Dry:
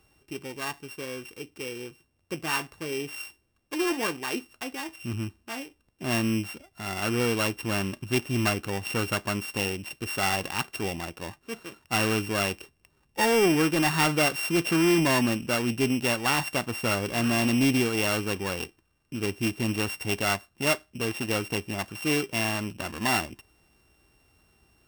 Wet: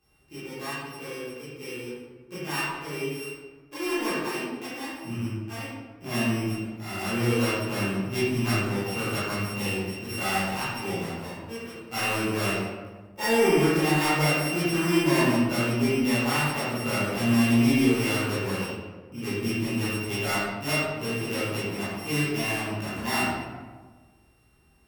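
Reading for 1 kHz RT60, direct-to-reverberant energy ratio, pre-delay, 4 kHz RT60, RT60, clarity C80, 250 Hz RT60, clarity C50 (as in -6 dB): 1.3 s, -12.0 dB, 14 ms, 0.75 s, 1.4 s, 0.5 dB, 1.6 s, -2.5 dB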